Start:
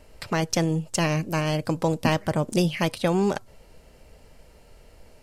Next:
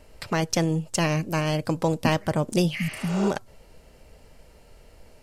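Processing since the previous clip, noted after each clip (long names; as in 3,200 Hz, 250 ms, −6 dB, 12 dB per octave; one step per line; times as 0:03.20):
healed spectral selection 0:02.81–0:03.26, 270–6,500 Hz both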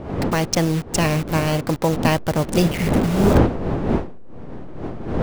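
hold until the input has moved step −29 dBFS
wind on the microphone 380 Hz −28 dBFS
level +4.5 dB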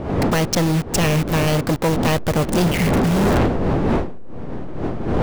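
gain into a clipping stage and back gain 19.5 dB
level +5.5 dB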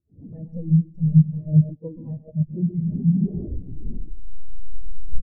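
bouncing-ball delay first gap 130 ms, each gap 0.7×, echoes 5
every bin expanded away from the loudest bin 4 to 1
level +1.5 dB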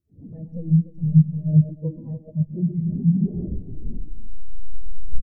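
single-tap delay 295 ms −14 dB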